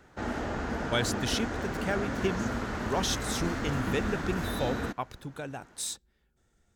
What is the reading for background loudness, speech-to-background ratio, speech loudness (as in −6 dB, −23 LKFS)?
−33.5 LKFS, −0.5 dB, −34.0 LKFS